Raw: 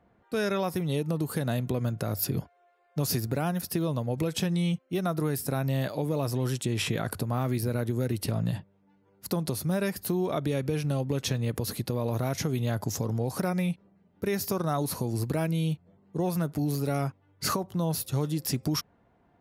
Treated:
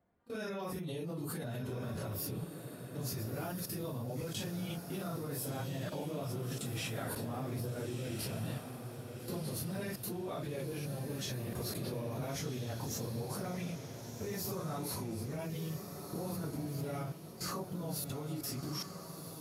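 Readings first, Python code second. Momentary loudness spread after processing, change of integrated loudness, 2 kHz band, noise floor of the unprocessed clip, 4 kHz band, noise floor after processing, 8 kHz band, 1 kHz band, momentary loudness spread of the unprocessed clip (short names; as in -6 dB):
4 LU, -10.0 dB, -9.0 dB, -66 dBFS, -8.0 dB, -48 dBFS, -7.0 dB, -9.5 dB, 4 LU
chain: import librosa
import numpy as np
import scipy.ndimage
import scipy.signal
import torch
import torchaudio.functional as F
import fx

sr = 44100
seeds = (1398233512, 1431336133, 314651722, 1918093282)

y = fx.phase_scramble(x, sr, seeds[0], window_ms=100)
y = fx.level_steps(y, sr, step_db=19)
y = fx.echo_diffused(y, sr, ms=1369, feedback_pct=41, wet_db=-6.5)
y = F.gain(torch.from_numpy(y), -1.5).numpy()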